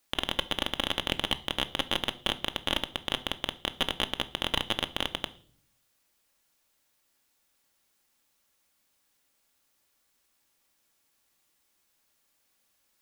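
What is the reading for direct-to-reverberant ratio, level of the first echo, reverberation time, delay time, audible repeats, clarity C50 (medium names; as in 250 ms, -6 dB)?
9.0 dB, no echo, 0.50 s, no echo, no echo, 19.0 dB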